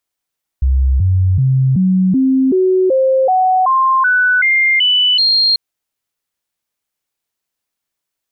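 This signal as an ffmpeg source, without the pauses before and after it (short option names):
-f lavfi -i "aevalsrc='0.355*clip(min(mod(t,0.38),0.38-mod(t,0.38))/0.005,0,1)*sin(2*PI*65.9*pow(2,floor(t/0.38)/2)*mod(t,0.38))':d=4.94:s=44100"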